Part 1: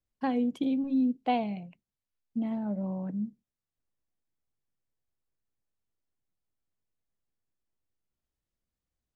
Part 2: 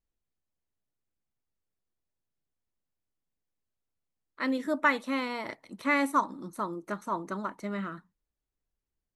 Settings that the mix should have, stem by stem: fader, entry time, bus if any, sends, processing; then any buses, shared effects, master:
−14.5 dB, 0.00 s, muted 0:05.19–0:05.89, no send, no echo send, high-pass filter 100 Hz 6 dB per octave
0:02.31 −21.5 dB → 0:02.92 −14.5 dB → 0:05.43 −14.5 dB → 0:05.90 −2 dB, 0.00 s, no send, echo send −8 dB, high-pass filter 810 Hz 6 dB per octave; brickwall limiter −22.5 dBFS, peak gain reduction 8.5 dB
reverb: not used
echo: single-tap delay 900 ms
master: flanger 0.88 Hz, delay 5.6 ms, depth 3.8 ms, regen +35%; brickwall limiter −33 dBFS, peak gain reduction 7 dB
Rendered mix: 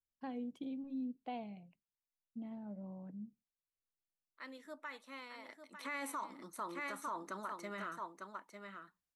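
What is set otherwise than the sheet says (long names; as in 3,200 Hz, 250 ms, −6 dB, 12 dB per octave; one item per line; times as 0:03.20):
stem 1: missing high-pass filter 100 Hz 6 dB per octave
master: missing flanger 0.88 Hz, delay 5.6 ms, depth 3.8 ms, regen +35%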